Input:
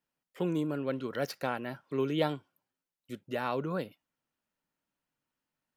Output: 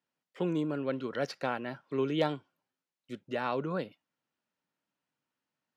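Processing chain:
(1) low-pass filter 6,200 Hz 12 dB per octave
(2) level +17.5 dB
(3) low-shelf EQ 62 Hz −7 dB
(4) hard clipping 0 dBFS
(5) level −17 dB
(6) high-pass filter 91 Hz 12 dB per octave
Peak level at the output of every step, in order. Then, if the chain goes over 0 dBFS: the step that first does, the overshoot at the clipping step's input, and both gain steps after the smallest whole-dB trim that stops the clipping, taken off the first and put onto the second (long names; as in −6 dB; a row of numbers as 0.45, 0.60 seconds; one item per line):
−14.0, +3.5, +3.0, 0.0, −17.0, −15.5 dBFS
step 2, 3.0 dB
step 2 +14.5 dB, step 5 −14 dB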